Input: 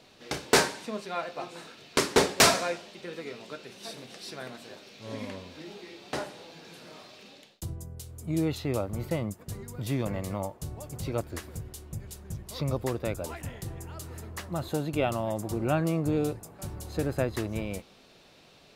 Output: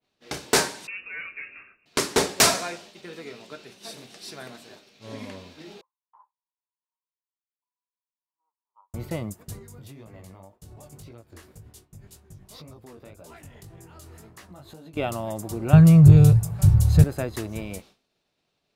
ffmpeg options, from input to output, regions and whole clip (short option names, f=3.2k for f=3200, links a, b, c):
-filter_complex "[0:a]asettb=1/sr,asplit=3[a][b][c];[a]atrim=end=0.874[d];[b]atrim=start=0.87:end=1.86,asetpts=PTS-STARTPTS,afade=t=in:d=0.004:c=qsin,afade=t=out:st=0.986:d=0.004:c=qsin,asoftclip=type=hard:threshold=-30dB,lowpass=f=2.5k:t=q:w=0.5098,lowpass=f=2.5k:t=q:w=0.6013,lowpass=f=2.5k:t=q:w=0.9,lowpass=f=2.5k:t=q:w=2.563,afreqshift=-2900,equalizer=f=790:w=2.2:g=-12.5[e];[c]atrim=start=1.856[f];[d][e]acrossfade=d=0.004:c1=hsin:c2=qsin[g];[g][f]acrossfade=d=0.004:c1=qsin:c2=hsin,asettb=1/sr,asplit=3[h][i][j];[h]atrim=end=5.814[k];[i]atrim=start=5.81:end=8.94,asetpts=PTS-STARTPTS,afade=t=in:d=0.004:c=qsin,afade=t=out:st=3.126:d=0.004:c=qsin,aecho=1:1:2.4:0.36,atrim=end_sample=138033,aeval=exprs='sgn(val(0))*max(abs(val(0))-0.00335,0)':c=same,asuperpass=centerf=1000:order=4:qfactor=7.6[l];[j]atrim=start=8.936[m];[k][l]acrossfade=d=0.004:c1=hsin:c2=qsin[n];[n][m]acrossfade=d=0.004:c1=qsin:c2=hsin,asettb=1/sr,asplit=3[o][p][q];[o]atrim=end=9.594[r];[p]atrim=start=9.59:end=14.97,asetpts=PTS-STARTPTS,afade=t=in:d=0.004:c=qsin,afade=t=out:st=5.376:d=0.004:c=qsin,flanger=delay=17.5:depth=4.3:speed=1.9,acompressor=threshold=-40dB:ratio=12:attack=3.2:release=140:knee=1:detection=peak[s];[q]atrim=start=14.966[t];[r][s]acrossfade=d=0.004:c1=hsin:c2=qsin[u];[u][t]acrossfade=d=0.004:c1=qsin:c2=hsin,asettb=1/sr,asplit=3[v][w][x];[v]atrim=end=15.734[y];[w]atrim=start=15.73:end=17.04,asetpts=PTS-STARTPTS,afade=t=in:d=0.004:c=qsin,afade=t=out:st=1.306:d=0.004:c=qsin,lowshelf=f=190:t=q:w=3:g=14,acontrast=46[z];[x]atrim=start=17.036[aa];[y][z]acrossfade=d=0.004:c1=hsin:c2=qsin[ab];[ab][aa]acrossfade=d=0.004:c1=qsin:c2=hsin,bandreject=f=520:w=17,agate=range=-33dB:threshold=-44dB:ratio=3:detection=peak,adynamicequalizer=threshold=0.00398:dfrequency=4900:dqfactor=0.7:tfrequency=4900:tqfactor=0.7:attack=5:release=100:ratio=0.375:range=2.5:mode=boostabove:tftype=highshelf"